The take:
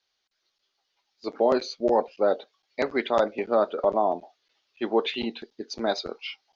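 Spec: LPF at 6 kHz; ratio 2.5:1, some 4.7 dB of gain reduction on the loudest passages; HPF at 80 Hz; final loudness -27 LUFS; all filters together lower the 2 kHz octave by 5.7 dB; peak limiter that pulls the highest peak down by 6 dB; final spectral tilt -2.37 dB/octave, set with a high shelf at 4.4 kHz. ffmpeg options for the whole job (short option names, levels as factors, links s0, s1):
-af "highpass=80,lowpass=6000,equalizer=f=2000:t=o:g=-8.5,highshelf=f=4400:g=5,acompressor=threshold=0.0631:ratio=2.5,volume=2,alimiter=limit=0.2:level=0:latency=1"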